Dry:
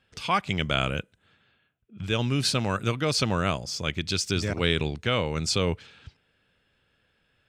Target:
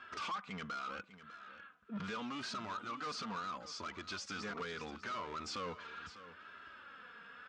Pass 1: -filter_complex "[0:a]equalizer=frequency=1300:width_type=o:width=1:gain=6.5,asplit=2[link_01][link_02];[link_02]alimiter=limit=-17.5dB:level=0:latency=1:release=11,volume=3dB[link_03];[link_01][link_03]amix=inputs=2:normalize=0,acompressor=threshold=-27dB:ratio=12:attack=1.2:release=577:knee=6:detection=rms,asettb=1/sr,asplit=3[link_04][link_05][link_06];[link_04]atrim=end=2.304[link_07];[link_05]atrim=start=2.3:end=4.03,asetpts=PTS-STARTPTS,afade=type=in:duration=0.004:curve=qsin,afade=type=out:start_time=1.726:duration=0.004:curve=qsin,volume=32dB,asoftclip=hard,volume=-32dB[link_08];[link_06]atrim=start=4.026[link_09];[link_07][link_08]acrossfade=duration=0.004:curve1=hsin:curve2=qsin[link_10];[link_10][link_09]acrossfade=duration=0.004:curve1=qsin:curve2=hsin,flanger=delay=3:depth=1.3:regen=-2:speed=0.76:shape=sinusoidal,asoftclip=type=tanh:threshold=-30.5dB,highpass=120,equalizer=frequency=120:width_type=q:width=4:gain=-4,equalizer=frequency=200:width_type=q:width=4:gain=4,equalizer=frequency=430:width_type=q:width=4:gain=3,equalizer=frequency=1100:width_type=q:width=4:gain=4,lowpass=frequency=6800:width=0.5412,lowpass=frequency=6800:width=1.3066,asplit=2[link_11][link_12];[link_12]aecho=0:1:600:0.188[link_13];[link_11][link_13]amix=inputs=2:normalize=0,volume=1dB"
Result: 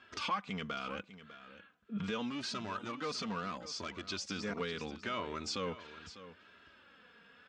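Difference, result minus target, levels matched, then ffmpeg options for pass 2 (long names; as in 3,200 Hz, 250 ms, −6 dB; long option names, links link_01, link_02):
soft clipping: distortion −12 dB; 1,000 Hz band −3.5 dB
-filter_complex "[0:a]equalizer=frequency=1300:width_type=o:width=1:gain=18,asplit=2[link_01][link_02];[link_02]alimiter=limit=-17.5dB:level=0:latency=1:release=11,volume=3dB[link_03];[link_01][link_03]amix=inputs=2:normalize=0,acompressor=threshold=-27dB:ratio=12:attack=1.2:release=577:knee=6:detection=rms,asettb=1/sr,asplit=3[link_04][link_05][link_06];[link_04]atrim=end=2.304[link_07];[link_05]atrim=start=2.3:end=4.03,asetpts=PTS-STARTPTS,afade=type=in:duration=0.004:curve=qsin,afade=type=out:start_time=1.726:duration=0.004:curve=qsin,volume=32dB,asoftclip=hard,volume=-32dB[link_08];[link_06]atrim=start=4.026[link_09];[link_07][link_08]acrossfade=duration=0.004:curve1=hsin:curve2=qsin[link_10];[link_10][link_09]acrossfade=duration=0.004:curve1=qsin:curve2=hsin,flanger=delay=3:depth=1.3:regen=-2:speed=0.76:shape=sinusoidal,asoftclip=type=tanh:threshold=-40.5dB,highpass=120,equalizer=frequency=120:width_type=q:width=4:gain=-4,equalizer=frequency=200:width_type=q:width=4:gain=4,equalizer=frequency=430:width_type=q:width=4:gain=3,equalizer=frequency=1100:width_type=q:width=4:gain=4,lowpass=frequency=6800:width=0.5412,lowpass=frequency=6800:width=1.3066,asplit=2[link_11][link_12];[link_12]aecho=0:1:600:0.188[link_13];[link_11][link_13]amix=inputs=2:normalize=0,volume=1dB"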